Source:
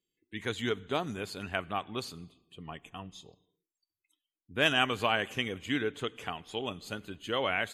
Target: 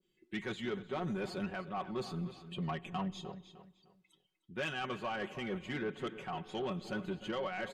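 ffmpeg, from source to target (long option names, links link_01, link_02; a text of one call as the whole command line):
ffmpeg -i in.wav -filter_complex "[0:a]aemphasis=mode=reproduction:type=50fm,aecho=1:1:5.4:0.82,areverse,acompressor=threshold=-35dB:ratio=8,areverse,alimiter=level_in=7.5dB:limit=-24dB:level=0:latency=1:release=421,volume=-7.5dB,asoftclip=type=tanh:threshold=-37dB,asplit=2[link_01][link_02];[link_02]adelay=304,lowpass=frequency=3600:poles=1,volume=-13dB,asplit=2[link_03][link_04];[link_04]adelay=304,lowpass=frequency=3600:poles=1,volume=0.32,asplit=2[link_05][link_06];[link_06]adelay=304,lowpass=frequency=3600:poles=1,volume=0.32[link_07];[link_01][link_03][link_05][link_07]amix=inputs=4:normalize=0,adynamicequalizer=threshold=0.001:dfrequency=1700:dqfactor=0.7:tfrequency=1700:tqfactor=0.7:attack=5:release=100:ratio=0.375:range=3.5:mode=cutabove:tftype=highshelf,volume=7.5dB" out.wav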